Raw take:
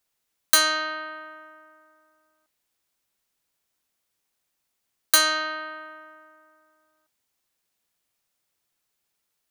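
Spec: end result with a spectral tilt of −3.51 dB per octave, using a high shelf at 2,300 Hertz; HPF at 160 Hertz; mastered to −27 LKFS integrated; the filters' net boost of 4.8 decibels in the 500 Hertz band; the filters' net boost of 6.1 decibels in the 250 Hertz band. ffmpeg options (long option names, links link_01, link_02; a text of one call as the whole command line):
ffmpeg -i in.wav -af "highpass=160,equalizer=frequency=250:width_type=o:gain=6,equalizer=frequency=500:width_type=o:gain=6.5,highshelf=frequency=2300:gain=-7,volume=-1.5dB" out.wav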